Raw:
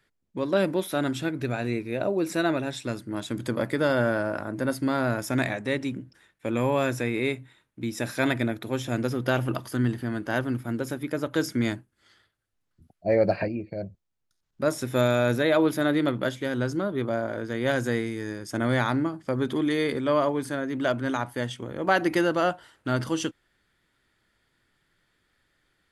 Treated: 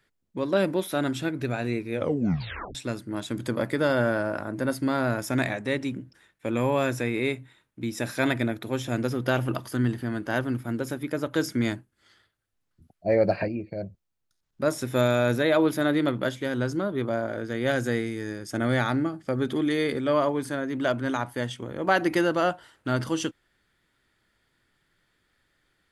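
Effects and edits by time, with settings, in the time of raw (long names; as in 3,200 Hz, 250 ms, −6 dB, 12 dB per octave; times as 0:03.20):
0:01.92: tape stop 0.83 s
0:17.26–0:20.14: notch filter 1,000 Hz, Q 7.1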